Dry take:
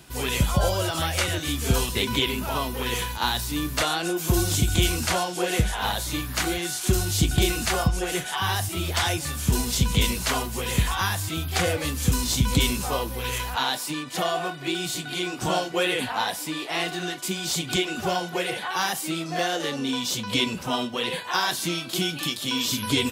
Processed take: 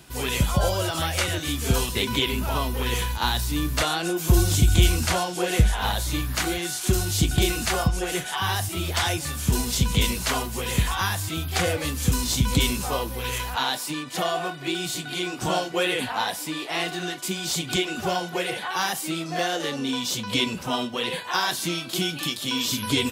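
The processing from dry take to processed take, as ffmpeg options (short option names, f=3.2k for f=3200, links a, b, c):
-filter_complex "[0:a]asettb=1/sr,asplit=3[a][b][c];[a]atrim=end=2.314[d];[b]atrim=start=2.31:end=6.35,asetpts=PTS-STARTPTS,afade=t=in:d=0.004:c=qsin,afade=t=out:st=4.036:d=0.004:c=qsin,lowshelf=f=79:g=10.5[e];[c]atrim=start=6.346[f];[d][e]acrossfade=d=0.004:c1=hsin:c2=qsin[g];[g][f]acrossfade=d=0.004:c1=qsin:c2=hsin"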